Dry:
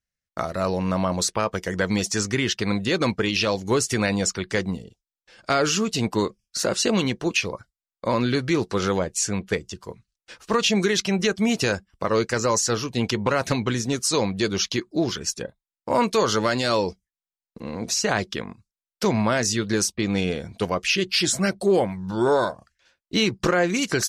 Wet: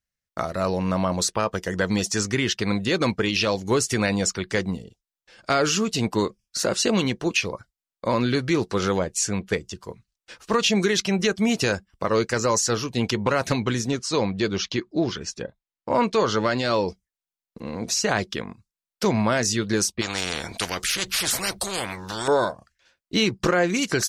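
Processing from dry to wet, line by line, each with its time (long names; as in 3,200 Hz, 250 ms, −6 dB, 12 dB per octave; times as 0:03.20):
0:01.25–0:02.13: notch filter 2,200 Hz
0:13.91–0:16.88: high-frequency loss of the air 96 metres
0:20.01–0:22.28: every bin compressed towards the loudest bin 4 to 1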